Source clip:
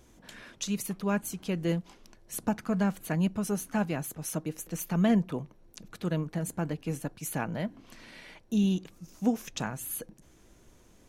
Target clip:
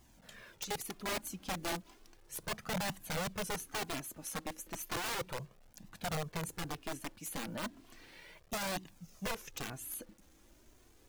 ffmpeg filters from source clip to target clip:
ffmpeg -i in.wav -af "aeval=exprs='(mod(18.8*val(0)+1,2)-1)/18.8':channel_layout=same,acrusher=bits=9:mix=0:aa=0.000001,flanger=delay=1:depth=2.8:regen=-24:speed=0.34:shape=triangular,volume=-2.5dB" out.wav

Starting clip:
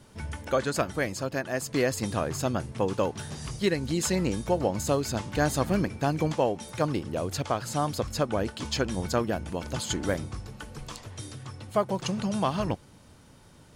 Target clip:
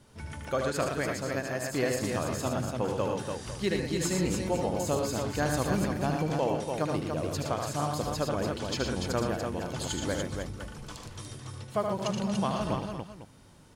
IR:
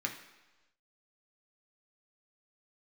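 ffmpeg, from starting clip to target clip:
-af "aecho=1:1:76|116|238|290|504:0.531|0.473|0.141|0.562|0.2,volume=-4.5dB"

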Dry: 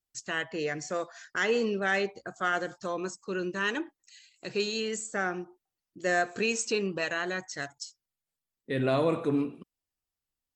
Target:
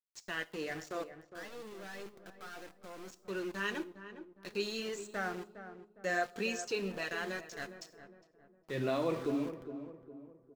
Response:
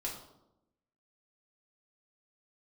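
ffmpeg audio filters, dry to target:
-filter_complex "[0:a]aeval=exprs='val(0)*gte(abs(val(0)),0.0133)':channel_layout=same,asplit=3[link_01][link_02][link_03];[link_01]afade=type=out:start_time=1.18:duration=0.02[link_04];[link_02]aeval=exprs='(tanh(89.1*val(0)+0.3)-tanh(0.3))/89.1':channel_layout=same,afade=type=in:start_time=1.18:duration=0.02,afade=type=out:start_time=3.07:duration=0.02[link_05];[link_03]afade=type=in:start_time=3.07:duration=0.02[link_06];[link_04][link_05][link_06]amix=inputs=3:normalize=0,asplit=2[link_07][link_08];[1:a]atrim=start_sample=2205,highshelf=frequency=5200:gain=10[link_09];[link_08][link_09]afir=irnorm=-1:irlink=0,volume=-16dB[link_10];[link_07][link_10]amix=inputs=2:normalize=0,acrossover=split=6800[link_11][link_12];[link_12]acompressor=threshold=-52dB:ratio=4:attack=1:release=60[link_13];[link_11][link_13]amix=inputs=2:normalize=0,flanger=delay=1.7:depth=4.1:regen=-51:speed=1.2:shape=triangular,asplit=2[link_14][link_15];[link_15]adelay=409,lowpass=frequency=1100:poles=1,volume=-10dB,asplit=2[link_16][link_17];[link_17]adelay=409,lowpass=frequency=1100:poles=1,volume=0.45,asplit=2[link_18][link_19];[link_19]adelay=409,lowpass=frequency=1100:poles=1,volume=0.45,asplit=2[link_20][link_21];[link_21]adelay=409,lowpass=frequency=1100:poles=1,volume=0.45,asplit=2[link_22][link_23];[link_23]adelay=409,lowpass=frequency=1100:poles=1,volume=0.45[link_24];[link_14][link_16][link_18][link_20][link_22][link_24]amix=inputs=6:normalize=0,volume=-3.5dB"

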